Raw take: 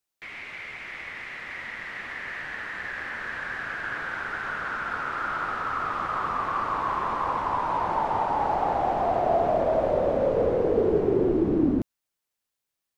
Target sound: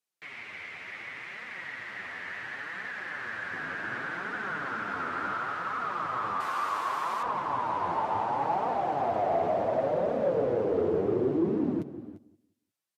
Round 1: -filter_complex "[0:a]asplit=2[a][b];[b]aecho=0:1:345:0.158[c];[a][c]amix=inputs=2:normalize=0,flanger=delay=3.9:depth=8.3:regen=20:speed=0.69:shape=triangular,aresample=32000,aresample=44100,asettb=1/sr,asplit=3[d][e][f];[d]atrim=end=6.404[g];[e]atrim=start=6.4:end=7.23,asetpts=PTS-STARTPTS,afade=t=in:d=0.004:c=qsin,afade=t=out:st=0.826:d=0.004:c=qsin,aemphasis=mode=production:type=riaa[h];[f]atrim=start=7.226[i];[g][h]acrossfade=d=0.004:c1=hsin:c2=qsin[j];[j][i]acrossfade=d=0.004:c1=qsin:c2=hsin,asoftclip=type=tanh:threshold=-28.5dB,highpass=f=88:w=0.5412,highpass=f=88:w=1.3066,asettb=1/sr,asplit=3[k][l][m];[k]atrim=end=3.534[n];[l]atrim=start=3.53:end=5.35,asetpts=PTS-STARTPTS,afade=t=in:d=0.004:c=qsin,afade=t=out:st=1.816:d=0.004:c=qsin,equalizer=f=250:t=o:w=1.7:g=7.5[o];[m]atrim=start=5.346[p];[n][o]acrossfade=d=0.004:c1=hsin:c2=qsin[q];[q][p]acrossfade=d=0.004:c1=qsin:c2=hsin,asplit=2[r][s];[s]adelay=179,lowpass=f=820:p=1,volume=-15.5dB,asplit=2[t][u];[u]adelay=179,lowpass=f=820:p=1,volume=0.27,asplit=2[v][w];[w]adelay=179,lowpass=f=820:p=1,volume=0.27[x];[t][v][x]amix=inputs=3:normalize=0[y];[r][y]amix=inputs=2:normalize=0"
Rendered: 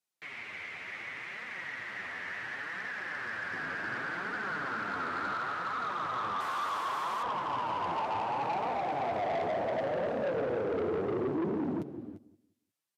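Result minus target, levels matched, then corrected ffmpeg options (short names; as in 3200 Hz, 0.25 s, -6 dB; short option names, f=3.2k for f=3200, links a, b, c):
soft clip: distortion +14 dB
-filter_complex "[0:a]asplit=2[a][b];[b]aecho=0:1:345:0.158[c];[a][c]amix=inputs=2:normalize=0,flanger=delay=3.9:depth=8.3:regen=20:speed=0.69:shape=triangular,aresample=32000,aresample=44100,asettb=1/sr,asplit=3[d][e][f];[d]atrim=end=6.404[g];[e]atrim=start=6.4:end=7.23,asetpts=PTS-STARTPTS,afade=t=in:d=0.004:c=qsin,afade=t=out:st=0.826:d=0.004:c=qsin,aemphasis=mode=production:type=riaa[h];[f]atrim=start=7.226[i];[g][h]acrossfade=d=0.004:c1=hsin:c2=qsin[j];[j][i]acrossfade=d=0.004:c1=qsin:c2=hsin,asoftclip=type=tanh:threshold=-17dB,highpass=f=88:w=0.5412,highpass=f=88:w=1.3066,asettb=1/sr,asplit=3[k][l][m];[k]atrim=end=3.534[n];[l]atrim=start=3.53:end=5.35,asetpts=PTS-STARTPTS,afade=t=in:d=0.004:c=qsin,afade=t=out:st=1.816:d=0.004:c=qsin,equalizer=f=250:t=o:w=1.7:g=7.5[o];[m]atrim=start=5.346[p];[n][o]acrossfade=d=0.004:c1=hsin:c2=qsin[q];[q][p]acrossfade=d=0.004:c1=qsin:c2=hsin,asplit=2[r][s];[s]adelay=179,lowpass=f=820:p=1,volume=-15.5dB,asplit=2[t][u];[u]adelay=179,lowpass=f=820:p=1,volume=0.27,asplit=2[v][w];[w]adelay=179,lowpass=f=820:p=1,volume=0.27[x];[t][v][x]amix=inputs=3:normalize=0[y];[r][y]amix=inputs=2:normalize=0"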